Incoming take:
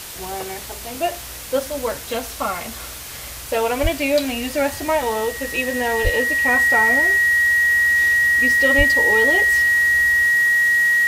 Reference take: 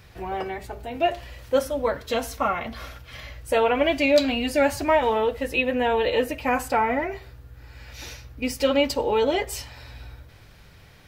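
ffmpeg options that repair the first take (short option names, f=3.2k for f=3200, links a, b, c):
-filter_complex "[0:a]bandreject=f=1.9k:w=30,asplit=3[a][b][c];[a]afade=t=out:st=3.82:d=0.02[d];[b]highpass=f=140:w=0.5412,highpass=f=140:w=1.3066,afade=t=in:st=3.82:d=0.02,afade=t=out:st=3.94:d=0.02[e];[c]afade=t=in:st=3.94:d=0.02[f];[d][e][f]amix=inputs=3:normalize=0,asplit=3[g][h][i];[g]afade=t=out:st=6.03:d=0.02[j];[h]highpass=f=140:w=0.5412,highpass=f=140:w=1.3066,afade=t=in:st=6.03:d=0.02,afade=t=out:st=6.15:d=0.02[k];[i]afade=t=in:st=6.15:d=0.02[l];[j][k][l]amix=inputs=3:normalize=0,asplit=3[m][n][o];[m]afade=t=out:st=8.77:d=0.02[p];[n]highpass=f=140:w=0.5412,highpass=f=140:w=1.3066,afade=t=in:st=8.77:d=0.02,afade=t=out:st=8.89:d=0.02[q];[o]afade=t=in:st=8.89:d=0.02[r];[p][q][r]amix=inputs=3:normalize=0,afwtdn=0.022"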